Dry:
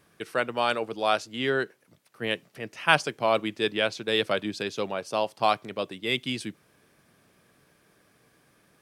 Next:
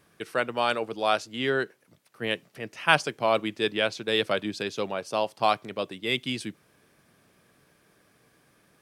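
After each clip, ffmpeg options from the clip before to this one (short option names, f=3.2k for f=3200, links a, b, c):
-af anull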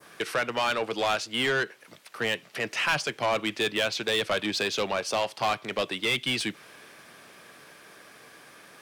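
-filter_complex "[0:a]adynamicequalizer=threshold=0.0112:dfrequency=2900:dqfactor=0.74:tfrequency=2900:tqfactor=0.74:attack=5:release=100:ratio=0.375:range=2:mode=boostabove:tftype=bell,acrossover=split=160[a][b];[b]acompressor=threshold=-37dB:ratio=2[c];[a][c]amix=inputs=2:normalize=0,asplit=2[d][e];[e]highpass=f=720:p=1,volume=21dB,asoftclip=type=tanh:threshold=-16.5dB[f];[d][f]amix=inputs=2:normalize=0,lowpass=f=6.6k:p=1,volume=-6dB"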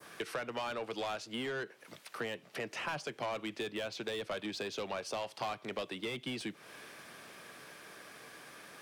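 -filter_complex "[0:a]acrossover=split=130|1000[a][b][c];[a]acompressor=threshold=-59dB:ratio=4[d];[b]acompressor=threshold=-37dB:ratio=4[e];[c]acompressor=threshold=-42dB:ratio=4[f];[d][e][f]amix=inputs=3:normalize=0,volume=-1.5dB"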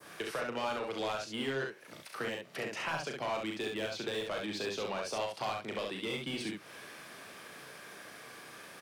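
-af "aecho=1:1:37|67:0.531|0.668"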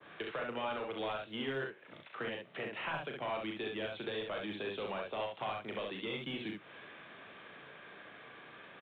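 -filter_complex "[0:a]aresample=8000,aresample=44100,acrossover=split=110|660|2400[a][b][c][d];[a]acrusher=bits=3:mode=log:mix=0:aa=0.000001[e];[e][b][c][d]amix=inputs=4:normalize=0,volume=-2.5dB"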